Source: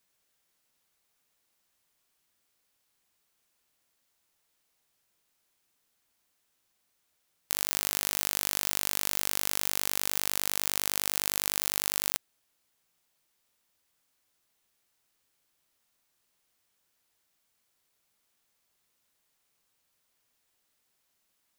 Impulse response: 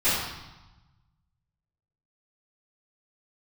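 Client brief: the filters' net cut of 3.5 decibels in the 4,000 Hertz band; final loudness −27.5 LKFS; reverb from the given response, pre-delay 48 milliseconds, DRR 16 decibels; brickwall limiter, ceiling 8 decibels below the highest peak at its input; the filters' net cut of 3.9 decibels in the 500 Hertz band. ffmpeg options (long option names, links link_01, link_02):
-filter_complex "[0:a]equalizer=frequency=500:width_type=o:gain=-5,equalizer=frequency=4000:width_type=o:gain=-4.5,alimiter=limit=-10.5dB:level=0:latency=1,asplit=2[link_01][link_02];[1:a]atrim=start_sample=2205,adelay=48[link_03];[link_02][link_03]afir=irnorm=-1:irlink=0,volume=-31dB[link_04];[link_01][link_04]amix=inputs=2:normalize=0,volume=9.5dB"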